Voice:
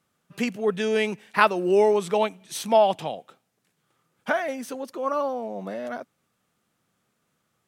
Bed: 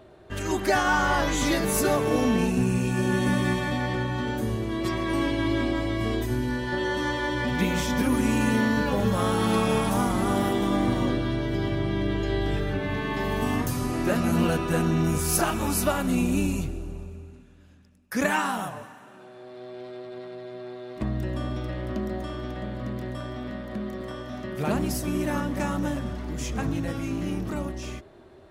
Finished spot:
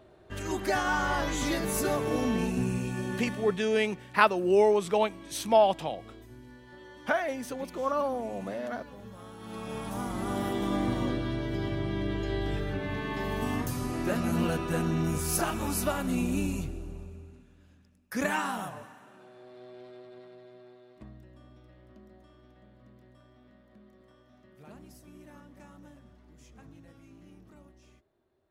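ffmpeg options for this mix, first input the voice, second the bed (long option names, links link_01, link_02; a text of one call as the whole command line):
ffmpeg -i stem1.wav -i stem2.wav -filter_complex "[0:a]adelay=2800,volume=-3dB[link_01];[1:a]volume=12dB,afade=type=out:start_time=2.66:duration=0.99:silence=0.141254,afade=type=in:start_time=9.39:duration=1.33:silence=0.133352,afade=type=out:start_time=18.93:duration=2.33:silence=0.112202[link_02];[link_01][link_02]amix=inputs=2:normalize=0" out.wav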